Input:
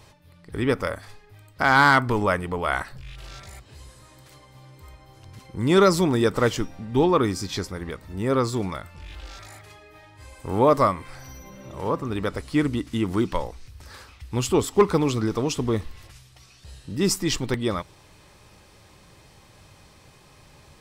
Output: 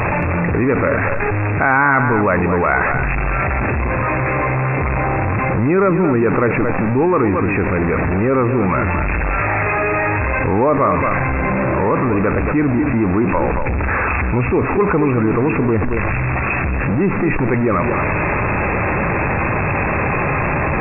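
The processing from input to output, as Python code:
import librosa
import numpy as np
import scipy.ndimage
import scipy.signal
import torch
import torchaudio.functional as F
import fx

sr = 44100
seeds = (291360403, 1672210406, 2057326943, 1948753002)

y = x + 0.5 * 10.0 ** (-22.5 / 20.0) * np.sign(x)
y = fx.brickwall_lowpass(y, sr, high_hz=2700.0)
y = fx.low_shelf(y, sr, hz=97.0, db=-6.0)
y = y + 10.0 ** (-11.0 / 20.0) * np.pad(y, (int(225 * sr / 1000.0), 0))[:len(y)]
y = fx.env_flatten(y, sr, amount_pct=70)
y = y * 10.0 ** (-1.0 / 20.0)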